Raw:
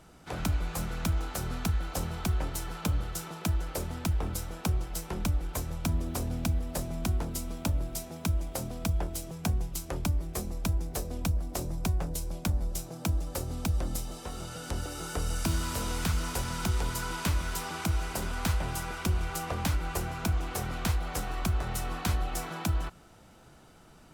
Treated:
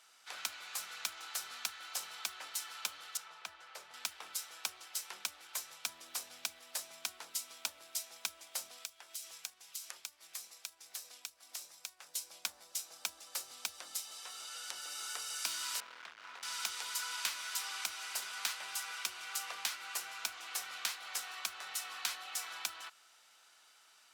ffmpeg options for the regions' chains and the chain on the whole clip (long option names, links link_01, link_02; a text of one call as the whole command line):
ffmpeg -i in.wav -filter_complex "[0:a]asettb=1/sr,asplit=3[link_01][link_02][link_03];[link_01]atrim=end=3.174[link_04];[link_02]atrim=start=3.17:end=3.94,asetpts=PTS-STARTPTS,afade=type=in:duration=0.004:curve=qsin,afade=type=out:start_time=0.766:duration=0.004:curve=qsin,lowpass=frequency=1600:poles=1,equalizer=frequency=280:width=2.5:gain=-8.5[link_05];[link_03]atrim=start=3.936[link_06];[link_04][link_05]acrossfade=duration=0.004:curve1=hsin:curve2=qsin[link_07];[link_07][link_06]acrossfade=duration=0.004:curve1=qsin:curve2=hsin,asettb=1/sr,asplit=3[link_08][link_09][link_10];[link_08]atrim=end=8.784[link_11];[link_09]atrim=start=8.78:end=12.15,asetpts=PTS-STARTPTS,afade=type=in:duration=0.004:curve=qsin,afade=type=out:start_time=3.366:duration=0.004:curve=qsin,tiltshelf=frequency=860:gain=-4.5,acompressor=threshold=-38dB:ratio=5:attack=3.2:release=140:knee=1:detection=peak[link_12];[link_10]atrim=start=12.146[link_13];[link_11][link_12]acrossfade=duration=0.004:curve1=hsin:curve2=qsin[link_14];[link_14][link_13]acrossfade=duration=0.004:curve1=qsin:curve2=hsin,asettb=1/sr,asplit=3[link_15][link_16][link_17];[link_15]atrim=end=15.804[link_18];[link_16]atrim=start=15.8:end=16.43,asetpts=PTS-STARTPTS,afade=type=in:duration=0.004:curve=qsin,afade=type=out:start_time=0.626:duration=0.004:curve=qsin,lowpass=1600,volume=35dB,asoftclip=hard,volume=-35dB[link_19];[link_17]atrim=start=16.426[link_20];[link_18][link_19]acrossfade=duration=0.004:curve1=hsin:curve2=qsin[link_21];[link_21][link_20]acrossfade=duration=0.004:curve1=qsin:curve2=hsin,highpass=1400,equalizer=frequency=4600:width_type=o:width=1.7:gain=5,volume=-3dB" out.wav